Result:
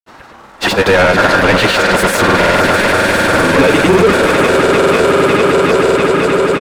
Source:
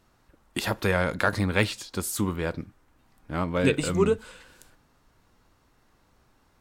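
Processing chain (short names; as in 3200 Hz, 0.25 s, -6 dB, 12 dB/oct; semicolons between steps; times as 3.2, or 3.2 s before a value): swelling echo 0.129 s, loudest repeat 8, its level -14 dB; overdrive pedal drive 34 dB, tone 1800 Hz, clips at -6.5 dBFS; grains, pitch spread up and down by 0 st; gain +7 dB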